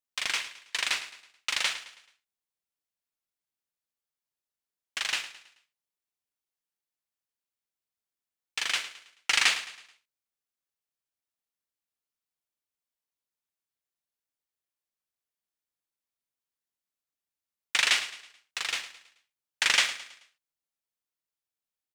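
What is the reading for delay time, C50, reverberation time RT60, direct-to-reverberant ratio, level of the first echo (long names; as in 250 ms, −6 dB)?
108 ms, no reverb audible, no reverb audible, no reverb audible, −14.0 dB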